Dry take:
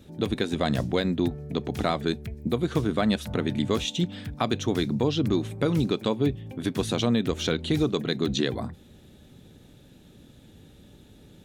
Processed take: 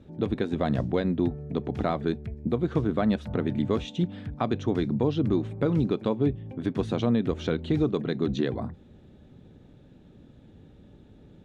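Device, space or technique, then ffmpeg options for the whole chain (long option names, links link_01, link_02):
through cloth: -af "lowpass=8100,highshelf=frequency=2800:gain=-17"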